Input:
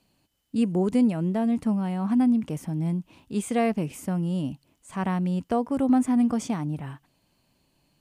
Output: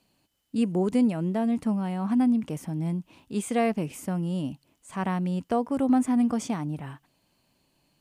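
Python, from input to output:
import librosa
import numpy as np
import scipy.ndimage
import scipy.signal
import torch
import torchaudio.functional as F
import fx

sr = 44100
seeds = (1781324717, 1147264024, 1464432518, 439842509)

y = fx.low_shelf(x, sr, hz=150.0, db=-5.0)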